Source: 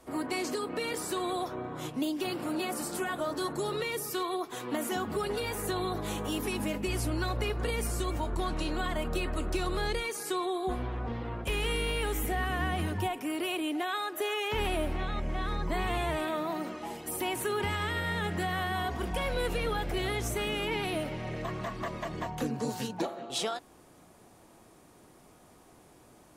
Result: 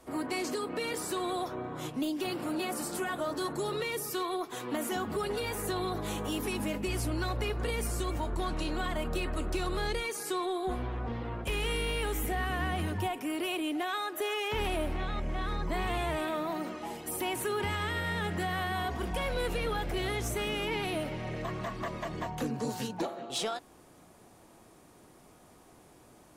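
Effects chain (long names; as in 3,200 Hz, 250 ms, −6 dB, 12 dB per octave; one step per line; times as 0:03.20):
soft clipping −22.5 dBFS, distortion −23 dB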